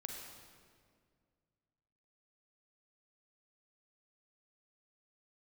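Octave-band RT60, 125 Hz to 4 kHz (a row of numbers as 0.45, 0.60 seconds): 2.7, 2.4, 2.2, 1.8, 1.6, 1.4 seconds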